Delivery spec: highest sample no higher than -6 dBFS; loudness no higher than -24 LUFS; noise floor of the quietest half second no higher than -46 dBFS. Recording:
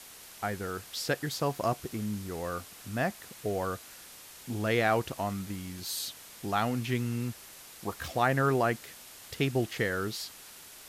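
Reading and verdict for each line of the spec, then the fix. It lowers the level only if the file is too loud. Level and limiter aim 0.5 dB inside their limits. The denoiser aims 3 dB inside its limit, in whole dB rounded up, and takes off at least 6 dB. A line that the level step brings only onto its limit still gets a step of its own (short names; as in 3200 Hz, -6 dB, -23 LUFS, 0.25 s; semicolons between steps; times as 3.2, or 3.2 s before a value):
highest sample -13.5 dBFS: OK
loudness -32.0 LUFS: OK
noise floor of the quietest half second -50 dBFS: OK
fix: none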